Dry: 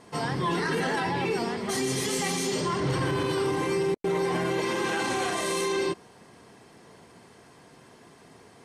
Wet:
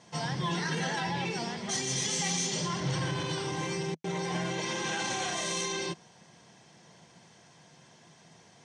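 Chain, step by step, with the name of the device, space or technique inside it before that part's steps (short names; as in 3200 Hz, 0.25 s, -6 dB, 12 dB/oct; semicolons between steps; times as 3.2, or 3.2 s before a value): car door speaker (speaker cabinet 100–8500 Hz, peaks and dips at 160 Hz +6 dB, 270 Hz -8 dB, 420 Hz -9 dB, 1200 Hz -6 dB, 3400 Hz +5 dB, 6000 Hz +10 dB); gain -3.5 dB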